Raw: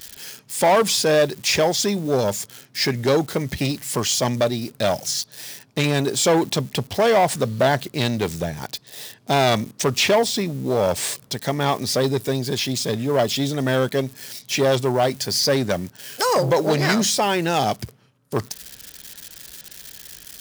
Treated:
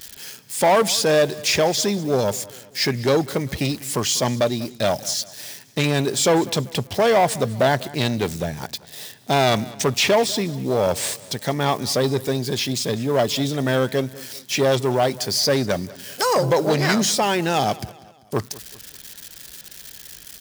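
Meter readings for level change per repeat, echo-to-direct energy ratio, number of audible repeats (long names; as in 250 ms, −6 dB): −7.0 dB, −19.0 dB, 3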